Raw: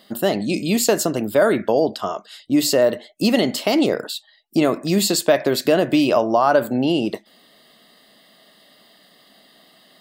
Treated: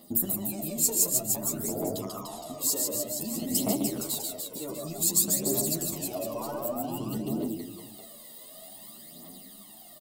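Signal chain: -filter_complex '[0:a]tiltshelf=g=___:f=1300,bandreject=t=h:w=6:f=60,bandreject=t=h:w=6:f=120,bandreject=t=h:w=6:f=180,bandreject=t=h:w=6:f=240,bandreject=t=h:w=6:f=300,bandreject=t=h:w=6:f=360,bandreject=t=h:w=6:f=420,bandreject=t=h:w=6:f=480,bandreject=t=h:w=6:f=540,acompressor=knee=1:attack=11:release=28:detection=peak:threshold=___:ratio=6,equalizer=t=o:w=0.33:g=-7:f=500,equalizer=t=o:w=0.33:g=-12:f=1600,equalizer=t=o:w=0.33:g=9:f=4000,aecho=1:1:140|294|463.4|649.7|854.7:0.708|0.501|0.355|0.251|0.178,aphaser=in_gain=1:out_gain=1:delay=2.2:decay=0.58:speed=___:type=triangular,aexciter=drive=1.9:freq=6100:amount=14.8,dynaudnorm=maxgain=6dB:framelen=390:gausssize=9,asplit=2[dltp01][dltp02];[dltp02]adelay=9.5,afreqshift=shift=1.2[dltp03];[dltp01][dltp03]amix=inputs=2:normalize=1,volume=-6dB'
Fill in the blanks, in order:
7.5, -26dB, 0.54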